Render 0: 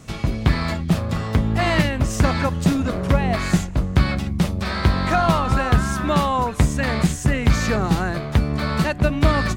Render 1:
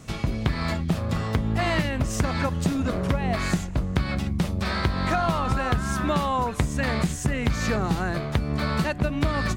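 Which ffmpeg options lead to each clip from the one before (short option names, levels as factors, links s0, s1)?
-af "acompressor=threshold=0.126:ratio=6,volume=0.841"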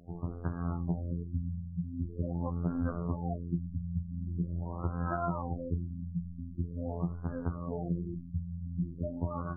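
-af "afftfilt=real='hypot(re,im)*cos(PI*b)':imag='0':win_size=2048:overlap=0.75,flanger=delay=5:depth=9.4:regen=87:speed=0.46:shape=sinusoidal,afftfilt=real='re*lt(b*sr/1024,230*pow(1700/230,0.5+0.5*sin(2*PI*0.44*pts/sr)))':imag='im*lt(b*sr/1024,230*pow(1700/230,0.5+0.5*sin(2*PI*0.44*pts/sr)))':win_size=1024:overlap=0.75,volume=0.841"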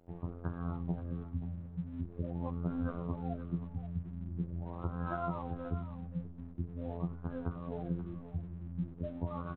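-af "aecho=1:1:530:0.251,aresample=8000,aeval=exprs='sgn(val(0))*max(abs(val(0))-0.00168,0)':c=same,aresample=44100,volume=0.708"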